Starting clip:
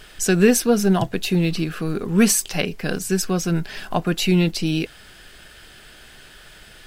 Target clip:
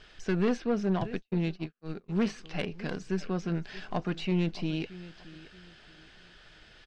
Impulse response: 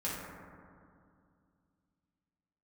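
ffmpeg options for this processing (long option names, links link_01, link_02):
-filter_complex "[0:a]acrossover=split=3300[link_01][link_02];[link_02]acompressor=threshold=-39dB:ratio=6[link_03];[link_01][link_03]amix=inputs=2:normalize=0,lowpass=frequency=5800:width=0.5412,lowpass=frequency=5800:width=1.3066,aecho=1:1:626|1252|1878:0.119|0.038|0.0122,asplit=3[link_04][link_05][link_06];[link_04]afade=type=out:start_time=1.15:duration=0.02[link_07];[link_05]agate=range=-53dB:threshold=-21dB:ratio=16:detection=peak,afade=type=in:start_time=1.15:duration=0.02,afade=type=out:start_time=2.08:duration=0.02[link_08];[link_06]afade=type=in:start_time=2.08:duration=0.02[link_09];[link_07][link_08][link_09]amix=inputs=3:normalize=0,aeval=exprs='(tanh(4.47*val(0)+0.45)-tanh(0.45))/4.47':channel_layout=same,volume=-8dB"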